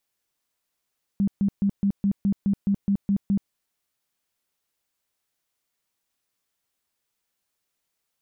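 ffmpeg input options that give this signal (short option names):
-f lavfi -i "aevalsrc='0.126*sin(2*PI*199*mod(t,0.21))*lt(mod(t,0.21),15/199)':d=2.31:s=44100"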